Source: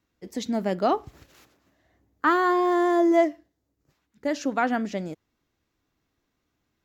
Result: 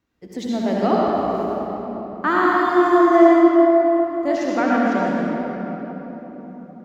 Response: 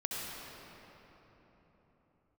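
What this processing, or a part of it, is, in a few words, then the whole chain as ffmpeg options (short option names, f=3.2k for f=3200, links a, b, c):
swimming-pool hall: -filter_complex "[1:a]atrim=start_sample=2205[a];[0:a][a]afir=irnorm=-1:irlink=0,highshelf=f=4.6k:g=-6,asettb=1/sr,asplit=3[b][c][d];[b]atrim=end=3.204[e];[c]atrim=start=3.2:end=4.36,asetpts=PTS-STARTPTS,afade=t=in:d=0.004:c=qsin,afade=t=out:st=1.156:d=0.004:c=qsin,asplit=2[f][g];[g]adelay=21,volume=-5.5dB[h];[f][h]amix=inputs=2:normalize=0,atrim=end_sample=51156[i];[d]atrim=start=4.356[j];[e][i]acrossfade=d=0.004:c1=hsin:c2=qsin[k];[k][j]acrossfade=d=0.004:c1=qsin:c2=hsin,volume=3dB"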